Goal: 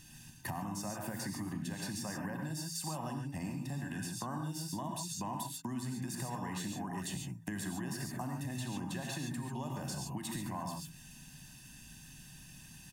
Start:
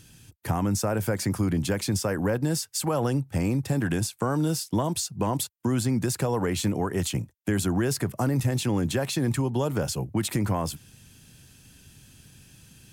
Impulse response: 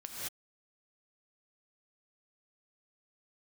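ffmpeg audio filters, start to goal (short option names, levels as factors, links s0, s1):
-filter_complex "[0:a]equalizer=f=86:t=o:w=0.8:g=-11,aecho=1:1:1.1:0.77[s0];[1:a]atrim=start_sample=2205,atrim=end_sample=6615[s1];[s0][s1]afir=irnorm=-1:irlink=0,acompressor=threshold=0.0112:ratio=5,bandreject=f=55.05:t=h:w=4,bandreject=f=110.1:t=h:w=4,bandreject=f=165.15:t=h:w=4,bandreject=f=220.2:t=h:w=4,bandreject=f=275.25:t=h:w=4,volume=1.19"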